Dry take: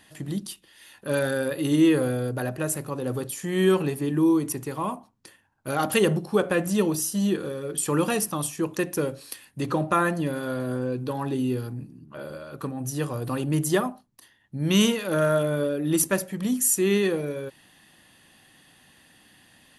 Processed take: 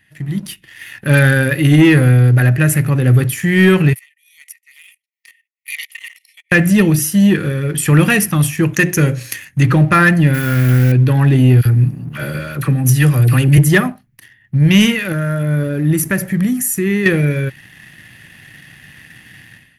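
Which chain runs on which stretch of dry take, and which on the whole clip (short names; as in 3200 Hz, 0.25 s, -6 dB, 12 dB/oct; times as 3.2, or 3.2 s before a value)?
3.93–6.52 brick-wall FIR high-pass 1800 Hz + level quantiser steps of 14 dB + beating tremolo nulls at 2.2 Hz
8.73–9.63 bell 6500 Hz +13.5 dB 0.29 oct + notches 60/120/180/240/300/360/420/480/540/600 Hz
10.34–10.92 switching spikes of -30.5 dBFS + short-mantissa float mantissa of 2-bit + bell 600 Hz -10 dB 0.22 oct
11.61–13.58 high shelf 3800 Hz +8.5 dB + dispersion lows, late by 44 ms, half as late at 1200 Hz
15.12–17.06 bell 2900 Hz -7.5 dB 1.3 oct + compressor 2:1, threshold -31 dBFS
whole clip: graphic EQ 125/250/500/1000/2000/4000/8000 Hz +9/-4/-8/-12/+11/-8/-9 dB; AGC gain up to 14 dB; sample leveller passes 1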